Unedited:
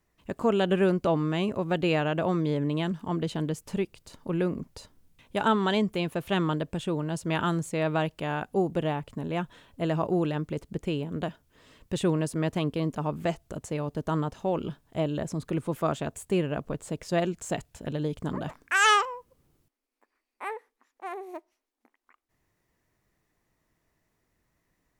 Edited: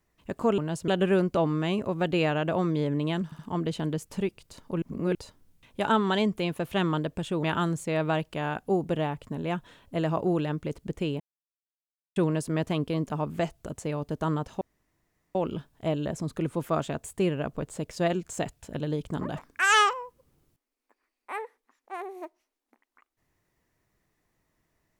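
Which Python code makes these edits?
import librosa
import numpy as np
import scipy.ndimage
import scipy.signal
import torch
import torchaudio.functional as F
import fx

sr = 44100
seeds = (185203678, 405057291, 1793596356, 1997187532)

y = fx.edit(x, sr, fx.stutter(start_s=2.95, slice_s=0.07, count=3),
    fx.reverse_span(start_s=4.38, length_s=0.33),
    fx.move(start_s=6.99, length_s=0.3, to_s=0.58),
    fx.silence(start_s=11.06, length_s=0.96),
    fx.insert_room_tone(at_s=14.47, length_s=0.74), tone=tone)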